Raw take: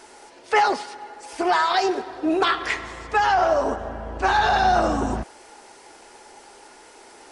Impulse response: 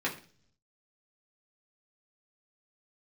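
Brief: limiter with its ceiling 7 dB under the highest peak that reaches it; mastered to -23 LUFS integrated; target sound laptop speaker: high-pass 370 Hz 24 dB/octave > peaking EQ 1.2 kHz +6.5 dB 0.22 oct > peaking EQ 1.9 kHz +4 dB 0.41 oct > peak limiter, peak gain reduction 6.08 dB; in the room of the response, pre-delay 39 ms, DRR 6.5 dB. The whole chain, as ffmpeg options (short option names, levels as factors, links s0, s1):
-filter_complex "[0:a]alimiter=limit=0.211:level=0:latency=1,asplit=2[s0][s1];[1:a]atrim=start_sample=2205,adelay=39[s2];[s1][s2]afir=irnorm=-1:irlink=0,volume=0.2[s3];[s0][s3]amix=inputs=2:normalize=0,highpass=f=370:w=0.5412,highpass=f=370:w=1.3066,equalizer=f=1200:t=o:w=0.22:g=6.5,equalizer=f=1900:t=o:w=0.41:g=4,volume=1.19,alimiter=limit=0.237:level=0:latency=1"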